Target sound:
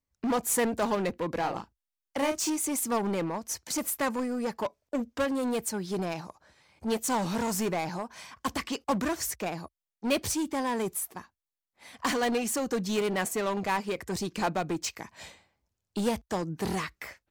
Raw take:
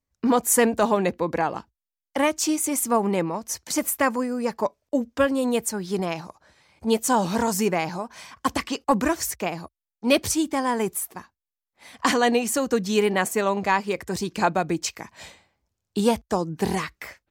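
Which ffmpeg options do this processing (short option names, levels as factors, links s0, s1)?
-filter_complex "[0:a]asplit=2[s0][s1];[s1]aeval=exprs='0.0631*(abs(mod(val(0)/0.0631+3,4)-2)-1)':c=same,volume=0.708[s2];[s0][s2]amix=inputs=2:normalize=0,asettb=1/sr,asplit=3[s3][s4][s5];[s3]atrim=end=1.404[s6];[s4]atrim=start=1.4:end=2.5,asetpts=PTS-STARTPTS,afade=t=in:d=0.004:c=qsin,afade=t=out:st=1.096:d=0.004:c=qsin,asplit=2[s7][s8];[s8]adelay=36,volume=0.501[s9];[s7][s9]amix=inputs=2:normalize=0,atrim=end_sample=48510[s10];[s5]atrim=start=2.496[s11];[s6][s10]acrossfade=d=0.004:c1=hsin:c2=qsin[s12];[s12][s11]acrossfade=d=0.004:c1=qsin:c2=hsin,volume=0.398"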